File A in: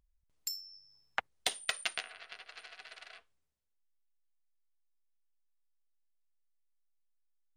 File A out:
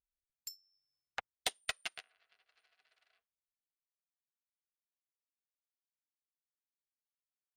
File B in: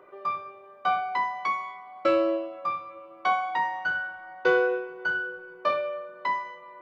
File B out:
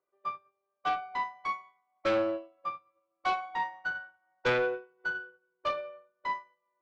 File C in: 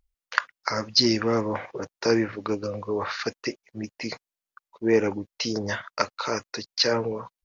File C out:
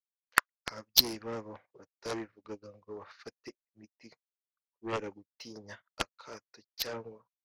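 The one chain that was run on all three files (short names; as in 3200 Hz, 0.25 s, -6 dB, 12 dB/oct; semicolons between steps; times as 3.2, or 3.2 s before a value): added harmonics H 2 -17 dB, 4 -20 dB, 6 -44 dB, 7 -11 dB, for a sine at -1 dBFS; upward expander 2.5:1, over -46 dBFS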